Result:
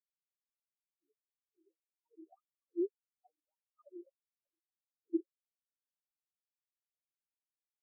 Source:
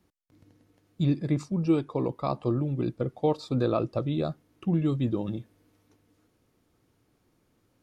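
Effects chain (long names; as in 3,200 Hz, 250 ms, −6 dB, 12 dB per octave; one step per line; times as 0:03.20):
on a send: flutter between parallel walls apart 6.9 metres, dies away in 1.3 s
on the sum: LFO wah 1.7 Hz 340–2,500 Hz, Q 18
in parallel at −9 dB: gain into a clipping stage and back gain 29.5 dB
on the sum: multi-voice chorus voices 4, 1 Hz, delay 12 ms, depth 3 ms
every bin expanded away from the loudest bin 4 to 1
level +1.5 dB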